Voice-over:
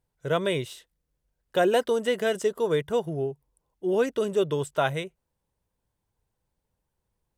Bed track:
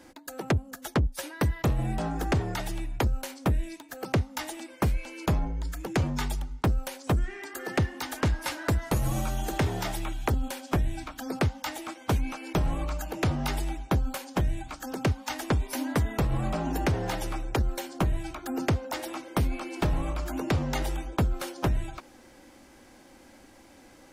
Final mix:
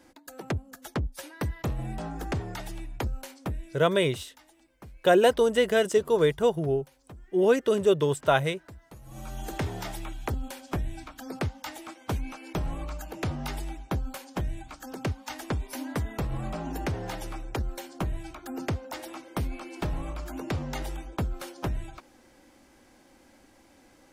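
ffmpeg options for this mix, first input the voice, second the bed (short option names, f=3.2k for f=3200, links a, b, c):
-filter_complex "[0:a]adelay=3500,volume=2.5dB[a];[1:a]volume=12.5dB,afade=t=out:st=3.22:d=0.94:silence=0.141254,afade=t=in:st=9.06:d=0.42:silence=0.133352[b];[a][b]amix=inputs=2:normalize=0"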